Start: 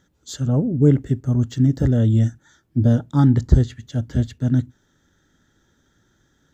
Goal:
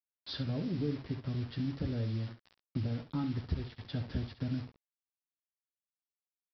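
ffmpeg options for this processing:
-af "acompressor=threshold=-29dB:ratio=8,aresample=11025,acrusher=bits=7:mix=0:aa=0.000001,aresample=44100,aecho=1:1:11|68:0.422|0.299,volume=-3dB"

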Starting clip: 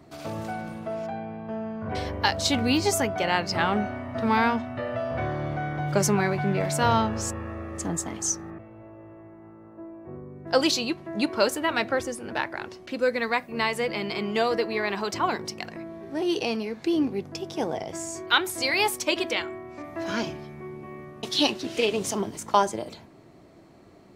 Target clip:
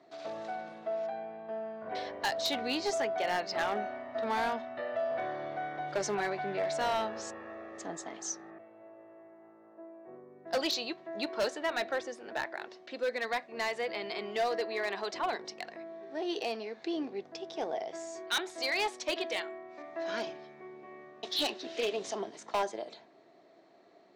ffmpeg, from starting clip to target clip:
-af "highpass=320,equalizer=f=410:t=q:w=4:g=3,equalizer=f=680:t=q:w=4:g=8,equalizer=f=1.8k:t=q:w=4:g=5,equalizer=f=3.8k:t=q:w=4:g=6,lowpass=f=6.6k:w=0.5412,lowpass=f=6.6k:w=1.3066,volume=16.5dB,asoftclip=hard,volume=-16.5dB,volume=-9dB"

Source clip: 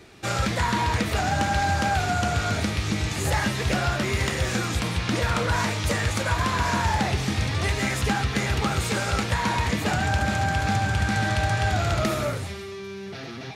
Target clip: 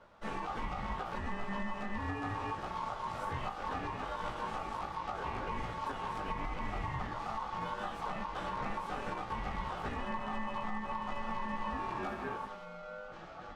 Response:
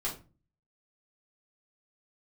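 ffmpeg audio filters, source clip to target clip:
-filter_complex "[0:a]asplit=2[a][b];[1:a]atrim=start_sample=2205,afade=t=out:st=0.44:d=0.01,atrim=end_sample=19845,highshelf=f=2.1k:g=-8.5[c];[b][c]afir=irnorm=-1:irlink=0,volume=-9dB[d];[a][d]amix=inputs=2:normalize=0,asplit=2[e][f];[f]asetrate=55563,aresample=44100,atempo=0.793701,volume=-2dB[g];[e][g]amix=inputs=2:normalize=0,flanger=delay=17:depth=2.6:speed=0.71,aeval=exprs='val(0)*sin(2*PI*1000*n/s)':c=same,lowpass=f=1.2k:p=1,lowshelf=f=130:g=9,alimiter=limit=-19.5dB:level=0:latency=1:release=236,volume=-7.5dB"

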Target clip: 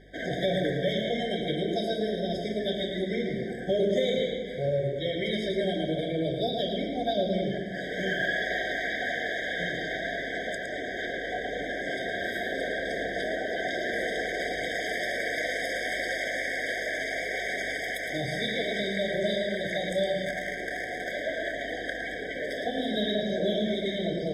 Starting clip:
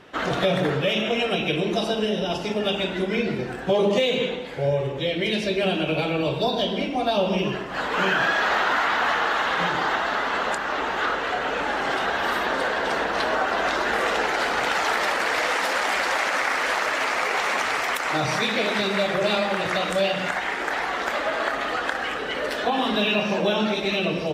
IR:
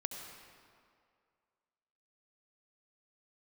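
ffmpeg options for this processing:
-filter_complex "[0:a]asplit=2[a][b];[1:a]atrim=start_sample=2205,adelay=111[c];[b][c]afir=irnorm=-1:irlink=0,volume=-5.5dB[d];[a][d]amix=inputs=2:normalize=0,aeval=exprs='val(0)+0.00355*(sin(2*PI*50*n/s)+sin(2*PI*2*50*n/s)/2+sin(2*PI*3*50*n/s)/3+sin(2*PI*4*50*n/s)/4+sin(2*PI*5*50*n/s)/5)':c=same,asettb=1/sr,asplit=3[e][f][g];[e]atrim=end=20.254[h];[f]atrim=start=20.25:end=21.06,asetpts=PTS-STARTPTS,afade=t=in:d=0.004:c=qsin,afade=t=out:st=0.806:d=0.004:c=qsin,adynamicsmooth=sensitivity=4:basefreq=840[i];[g]atrim=start=21.056[j];[h][i]acrossfade=d=0.004:c1=hsin:c2=qsin[k];[k][j]acrossfade=d=0.004:c1=qsin:c2=hsin,afftfilt=real='re*eq(mod(floor(b*sr/1024/770),2),0)':imag='im*eq(mod(floor(b*sr/1024/770),2),0)':win_size=1024:overlap=0.75,volume=-5.5dB"

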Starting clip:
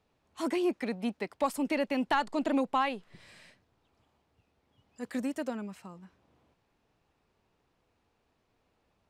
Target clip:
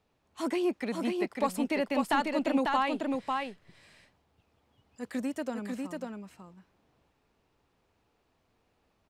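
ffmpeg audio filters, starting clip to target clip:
-af "aecho=1:1:546:0.668"

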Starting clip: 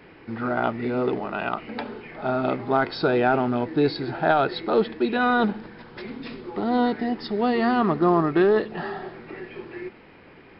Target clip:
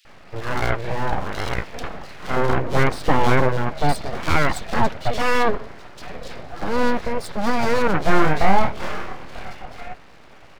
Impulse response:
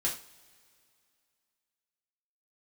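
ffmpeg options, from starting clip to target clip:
-filter_complex "[0:a]asettb=1/sr,asplit=3[a][b][c];[a]atrim=end=2.314[d];[b]atrim=start=2.31:end=3.44,asetpts=PTS-STARTPTS,afade=t=in:d=0.004:c=qsin,afade=t=out:st=1.126:d=0.004:c=qsin,aemphasis=mode=reproduction:type=bsi[e];[c]atrim=start=3.436[f];[d][e]acrossfade=d=0.004:c1=hsin:c2=qsin[g];[g][f]acrossfade=d=0.004:c1=qsin:c2=hsin,aeval=exprs='abs(val(0))':c=same,asettb=1/sr,asplit=3[h][i][j];[h]atrim=end=7.974[k];[i]atrim=start=7.97:end=9.5,asetpts=PTS-STARTPTS,afade=t=in:d=0.004:c=qsin,afade=t=out:st=1.526:d=0.004:c=qsin,asplit=2[l][m];[m]adelay=26,volume=-3.5dB[n];[l][n]amix=inputs=2:normalize=0,atrim=end_sample=67473[o];[j]atrim=start=9.496[p];[k][o]acrossfade=d=0.004:c1=hsin:c2=qsin[q];[q][p]acrossfade=d=0.004:c1=qsin:c2=hsin,acrossover=split=3000[r][s];[r]adelay=50[t];[t][s]amix=inputs=2:normalize=0,volume=5dB"

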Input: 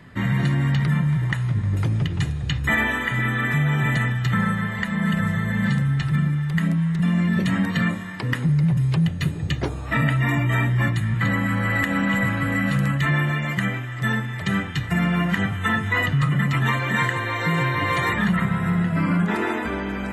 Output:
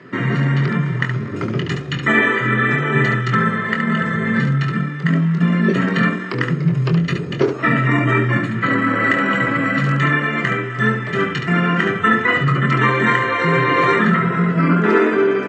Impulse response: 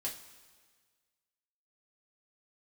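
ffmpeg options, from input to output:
-af "lowshelf=f=230:g=10,bandreject=f=50:t=h:w=6,bandreject=f=100:t=h:w=6,bandreject=f=150:t=h:w=6,bandreject=f=200:t=h:w=6,bandreject=f=250:t=h:w=6,bandreject=f=300:t=h:w=6,bandreject=f=350:t=h:w=6,bandreject=f=400:t=h:w=6,bandreject=f=450:t=h:w=6,atempo=1.3,highpass=f=180:w=0.5412,highpass=f=180:w=1.3066,equalizer=f=190:t=q:w=4:g=-8,equalizer=f=400:t=q:w=4:g=10,equalizer=f=820:t=q:w=4:g=-7,equalizer=f=1.3k:t=q:w=4:g=6,equalizer=f=3.7k:t=q:w=4:g=-6,lowpass=f=6.1k:w=0.5412,lowpass=f=6.1k:w=1.3066,aecho=1:1:23|71:0.447|0.473,volume=4.5dB"

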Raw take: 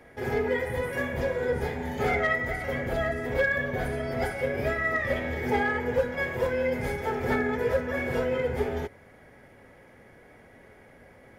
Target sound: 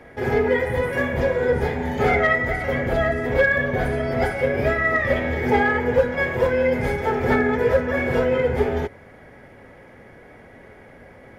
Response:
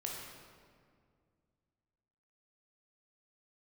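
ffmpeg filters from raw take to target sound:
-af "highshelf=f=5.4k:g=-8.5,volume=7.5dB"

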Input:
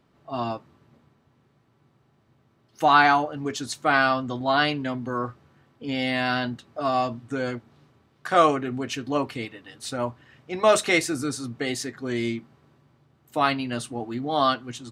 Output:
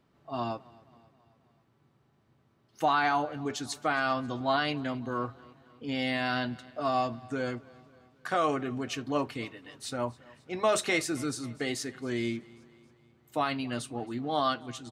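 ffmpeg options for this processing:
-af "alimiter=limit=-12dB:level=0:latency=1:release=87,aecho=1:1:269|538|807|1076:0.0708|0.0382|0.0206|0.0111,volume=-4.5dB"

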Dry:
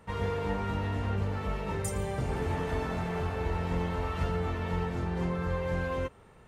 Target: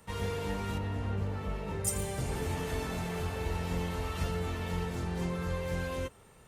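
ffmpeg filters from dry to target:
-filter_complex "[0:a]acrossover=split=520|1800[a][b][c];[b]asoftclip=type=tanh:threshold=-36.5dB[d];[c]crystalizer=i=3:c=0[e];[a][d][e]amix=inputs=3:normalize=0,asettb=1/sr,asplit=3[f][g][h];[f]atrim=end=0.784[i];[g]atrim=start=0.78:end=1.87,asetpts=PTS-STARTPTS,afade=t=in:d=0.004:c=qsin,afade=t=out:st=1.086:d=0.004:c=qsin,highshelf=f=2.9k:g=-11.5[j];[h]atrim=start=1.866[k];[i][j]acrossfade=d=0.004:c1=hsin:c2=qsin[l];[l][k]acrossfade=d=0.004:c1=qsin:c2=hsin,volume=-2.5dB" -ar 48000 -c:a libopus -b:a 48k

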